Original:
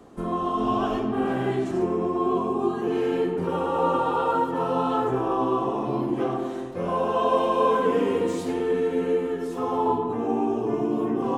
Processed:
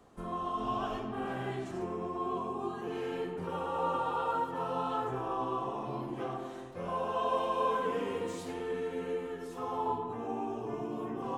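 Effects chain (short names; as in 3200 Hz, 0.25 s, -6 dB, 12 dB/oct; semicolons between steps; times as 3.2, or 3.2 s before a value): bell 300 Hz -7.5 dB 1.5 oct; gain -7 dB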